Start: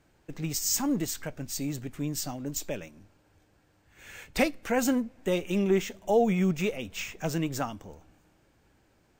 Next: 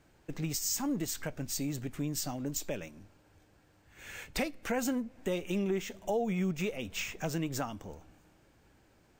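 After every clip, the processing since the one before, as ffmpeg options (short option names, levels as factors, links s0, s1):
-filter_complex "[0:a]asplit=2[s0][s1];[s1]alimiter=limit=0.1:level=0:latency=1:release=312,volume=1.19[s2];[s0][s2]amix=inputs=2:normalize=0,acompressor=threshold=0.0447:ratio=2,volume=0.501"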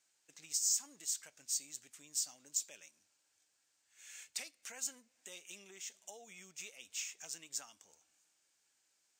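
-af "bandpass=f=7300:t=q:w=1.5:csg=0,volume=1.33"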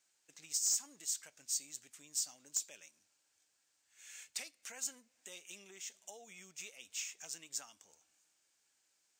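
-af "aeval=exprs='0.0631*(abs(mod(val(0)/0.0631+3,4)-2)-1)':c=same"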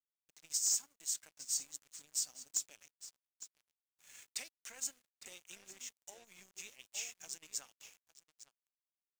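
-filter_complex "[0:a]asplit=2[s0][s1];[s1]adelay=857,lowpass=f=3900:p=1,volume=0.422,asplit=2[s2][s3];[s3]adelay=857,lowpass=f=3900:p=1,volume=0.23,asplit=2[s4][s5];[s5]adelay=857,lowpass=f=3900:p=1,volume=0.23[s6];[s0][s2][s4][s6]amix=inputs=4:normalize=0,aeval=exprs='sgn(val(0))*max(abs(val(0))-0.00168,0)':c=same,volume=1.12"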